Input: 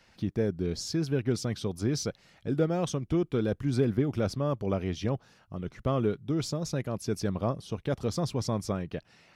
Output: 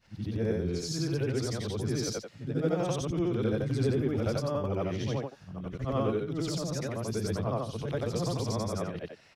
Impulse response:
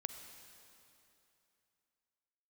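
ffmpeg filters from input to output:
-filter_complex "[0:a]afftfilt=real='re':imag='-im':win_size=8192:overlap=0.75,acrossover=split=230[s0][s1];[s1]adelay=70[s2];[s0][s2]amix=inputs=2:normalize=0,volume=1.68"

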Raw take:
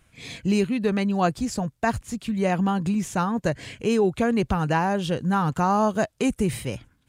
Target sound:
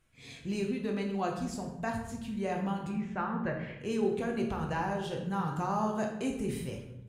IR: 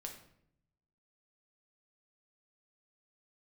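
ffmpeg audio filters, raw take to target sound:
-filter_complex "[0:a]asettb=1/sr,asplit=3[s0][s1][s2];[s0]atrim=end=2.894[s3];[s1]atrim=start=2.89:end=3.78,asetpts=PTS-STARTPTS,afade=t=in:d=0.004:c=qsin,afade=t=out:st=0.886:d=0.004:c=qsin,lowpass=f=2000:t=q:w=1.8[s4];[s2]atrim=start=3.776[s5];[s3][s4]acrossfade=d=0.004:c1=hsin:c2=qsin[s6];[s6][s5]acrossfade=d=0.004:c1=qsin:c2=hsin[s7];[1:a]atrim=start_sample=2205,asetrate=32193,aresample=44100[s8];[s7][s8]afir=irnorm=-1:irlink=0,volume=0.376"

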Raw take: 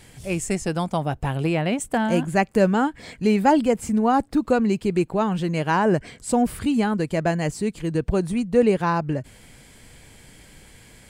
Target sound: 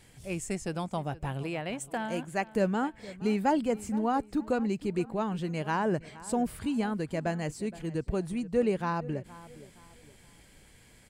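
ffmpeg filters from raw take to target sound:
-filter_complex "[0:a]asettb=1/sr,asplit=3[s0][s1][s2];[s0]atrim=end=1.434[s3];[s1]atrim=start=1.43:end=2.47,asetpts=PTS-STARTPTS,afade=t=in:d=0.004:c=qsin,afade=t=out:st=1.036:d=0.004:c=qsin,lowshelf=f=260:g=-9[s4];[s2]atrim=start=2.466[s5];[s3][s4]acrossfade=d=0.004:c1=hsin:c2=qsin[s6];[s6][s5]acrossfade=d=0.004:c1=qsin:c2=hsin,asplit=2[s7][s8];[s8]adelay=468,lowpass=f=3300:p=1,volume=0.126,asplit=2[s9][s10];[s10]adelay=468,lowpass=f=3300:p=1,volume=0.36,asplit=2[s11][s12];[s12]adelay=468,lowpass=f=3300:p=1,volume=0.36[s13];[s7][s9][s11][s13]amix=inputs=4:normalize=0,volume=0.355"

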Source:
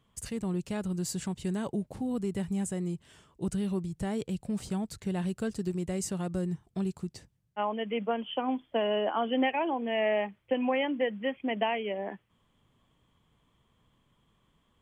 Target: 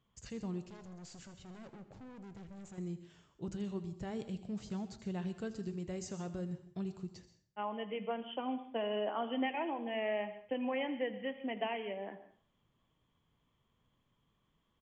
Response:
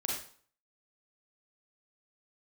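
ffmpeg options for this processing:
-filter_complex "[0:a]asettb=1/sr,asplit=3[s0][s1][s2];[s0]atrim=end=0.664[s3];[s1]atrim=start=0.66:end=2.78,asetpts=PTS-STARTPTS,afade=t=in:d=0.004:c=qsin,afade=t=out:st=2.116:d=0.004:c=qsin,aeval=exprs='(tanh(112*val(0)+0.45)-tanh(0.45))/112':c=same[s4];[s2]atrim=start=2.776[s5];[s3][s4]acrossfade=d=0.004:c1=hsin:c2=qsin[s6];[s6][s5]acrossfade=d=0.004:c1=qsin:c2=hsin,flanger=delay=5.4:depth=2.8:regen=-78:speed=0.4:shape=triangular,asplit=2[s7][s8];[1:a]atrim=start_sample=2205,highshelf=f=6800:g=8,adelay=81[s9];[s8][s9]afir=irnorm=-1:irlink=0,volume=0.158[s10];[s7][s10]amix=inputs=2:normalize=0,aresample=16000,aresample=44100,volume=0.668"

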